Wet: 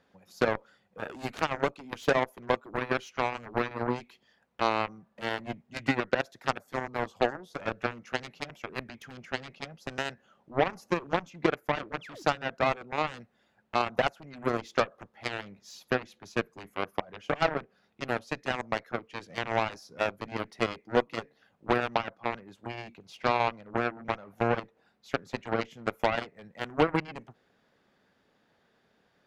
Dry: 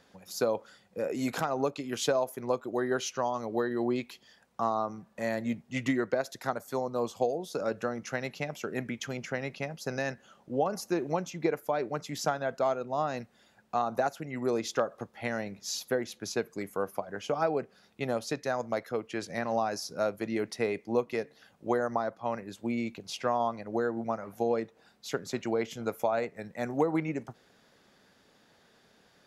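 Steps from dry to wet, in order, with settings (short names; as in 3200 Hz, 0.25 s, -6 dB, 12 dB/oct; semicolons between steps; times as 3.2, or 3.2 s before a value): painted sound fall, 12.01–12.23, 260–3600 Hz -40 dBFS; tone controls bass 0 dB, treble -10 dB; added harmonics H 7 -14 dB, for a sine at -14 dBFS; gain +3 dB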